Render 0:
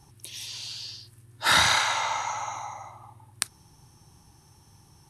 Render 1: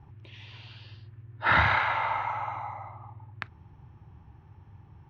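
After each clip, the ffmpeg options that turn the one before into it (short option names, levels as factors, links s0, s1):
-af "lowpass=f=2500:w=0.5412,lowpass=f=2500:w=1.3066,equalizer=f=85:w=1.2:g=9"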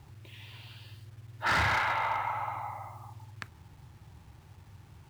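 -af "acrusher=bits=9:mix=0:aa=0.000001,asoftclip=type=hard:threshold=0.0794,volume=0.841"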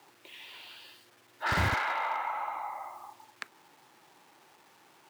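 -filter_complex "[0:a]acrossover=split=440[s0][s1];[s1]acompressor=threshold=0.00794:ratio=1.5[s2];[s0][s2]amix=inputs=2:normalize=0,acrossover=split=290[s3][s4];[s3]acrusher=bits=5:mix=0:aa=0.000001[s5];[s5][s4]amix=inputs=2:normalize=0,volume=1.5"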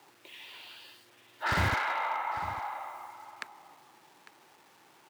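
-af "aecho=1:1:851:0.168"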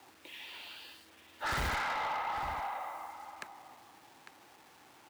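-filter_complex "[0:a]afreqshift=-31,acrossover=split=7100[s0][s1];[s0]asoftclip=type=tanh:threshold=0.0266[s2];[s2][s1]amix=inputs=2:normalize=0,volume=1.12"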